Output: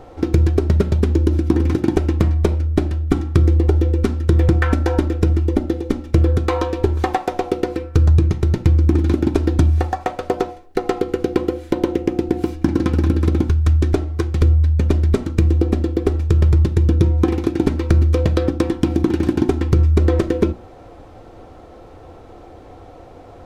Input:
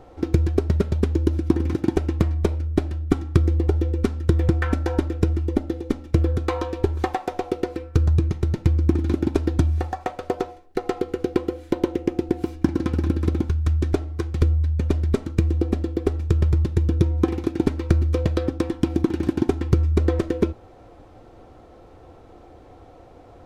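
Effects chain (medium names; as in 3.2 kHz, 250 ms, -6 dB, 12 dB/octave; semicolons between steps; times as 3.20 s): hum notches 60/120/180/240/300/360 Hz; in parallel at +3 dB: peak limiter -12.5 dBFS, peak gain reduction 8.5 dB; on the sum: trim -1 dB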